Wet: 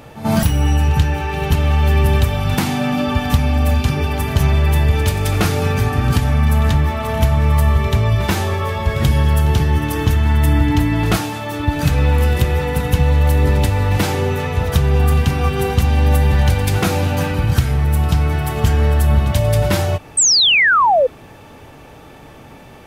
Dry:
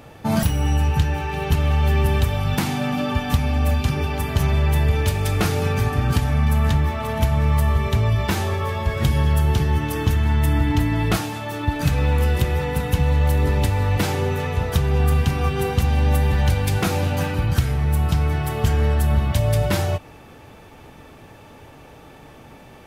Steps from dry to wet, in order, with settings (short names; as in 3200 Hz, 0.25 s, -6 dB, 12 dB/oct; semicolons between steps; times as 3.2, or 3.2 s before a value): reverse echo 85 ms -15 dB; painted sound fall, 20.17–21.07, 480–8600 Hz -16 dBFS; gain +4 dB